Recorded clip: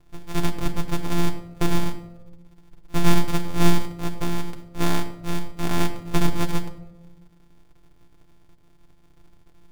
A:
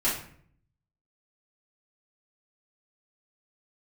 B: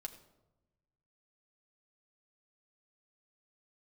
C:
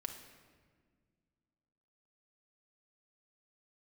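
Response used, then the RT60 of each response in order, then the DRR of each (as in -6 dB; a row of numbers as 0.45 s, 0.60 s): B; 0.60 s, 1.0 s, 1.7 s; -9.0 dB, 3.0 dB, 3.5 dB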